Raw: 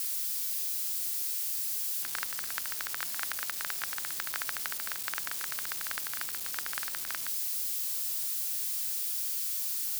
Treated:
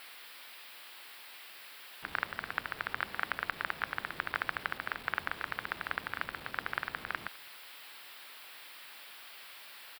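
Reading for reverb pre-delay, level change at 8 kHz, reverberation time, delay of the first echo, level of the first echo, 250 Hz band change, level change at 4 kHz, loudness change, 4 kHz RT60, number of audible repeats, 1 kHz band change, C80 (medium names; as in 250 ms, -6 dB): no reverb, -23.5 dB, no reverb, 207 ms, -23.5 dB, +7.5 dB, -6.5 dB, -8.5 dB, no reverb, 1, +5.5 dB, no reverb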